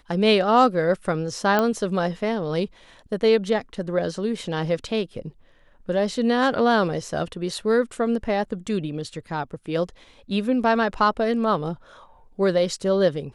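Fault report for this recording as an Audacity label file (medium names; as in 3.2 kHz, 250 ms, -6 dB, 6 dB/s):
1.590000	1.590000	pop -8 dBFS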